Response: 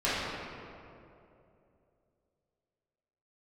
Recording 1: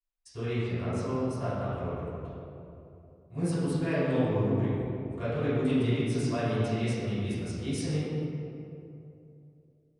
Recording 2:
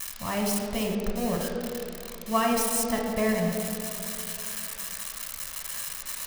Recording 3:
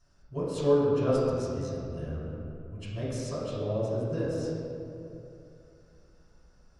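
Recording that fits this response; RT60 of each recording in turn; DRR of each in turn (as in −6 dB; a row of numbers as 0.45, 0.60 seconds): 1; 2.8, 2.8, 2.8 seconds; −13.5, 0.0, −8.5 decibels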